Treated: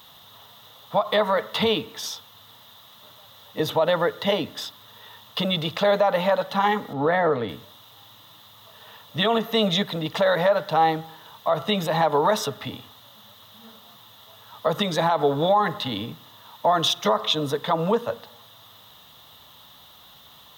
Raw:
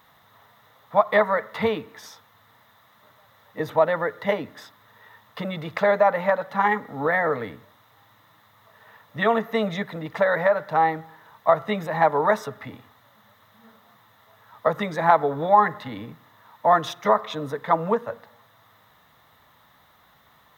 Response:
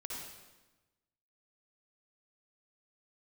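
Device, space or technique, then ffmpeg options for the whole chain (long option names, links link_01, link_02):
over-bright horn tweeter: -filter_complex "[0:a]asettb=1/sr,asplit=3[link_01][link_02][link_03];[link_01]atrim=end=6.934[link_04];[link_02]atrim=start=6.93:end=7.49,asetpts=PTS-STARTPTS,afade=type=in:duration=0.004:curve=qsin,afade=type=out:start_time=0.556:duration=0.004:curve=qsin,lowpass=frequency=1700:poles=1[link_05];[link_03]atrim=start=7.486[link_06];[link_04][link_05]acrossfade=duration=0.004:curve1=hsin:curve2=qsin[link_07];[link_07][link_06]acrossfade=duration=0.004:curve1=qsin:curve2=hsin,highshelf=frequency=2500:width_type=q:width=3:gain=6.5,alimiter=limit=-15.5dB:level=0:latency=1:release=57,volume=4.5dB"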